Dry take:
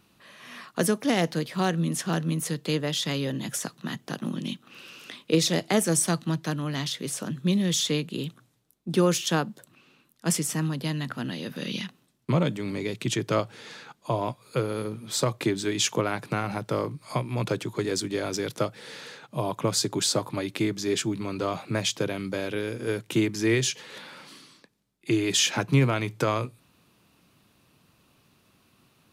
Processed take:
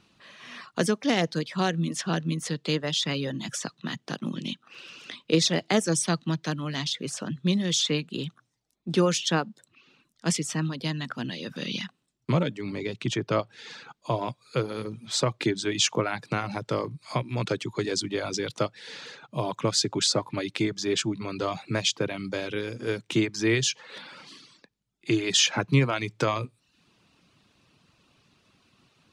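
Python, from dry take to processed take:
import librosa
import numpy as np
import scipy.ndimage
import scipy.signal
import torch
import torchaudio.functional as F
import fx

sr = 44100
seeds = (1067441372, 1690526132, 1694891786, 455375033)

y = fx.air_absorb(x, sr, metres=120.0)
y = fx.dereverb_blind(y, sr, rt60_s=0.56)
y = fx.high_shelf(y, sr, hz=3600.0, db=fx.steps((0.0, 11.5), (12.41, 4.5), (13.57, 12.0)))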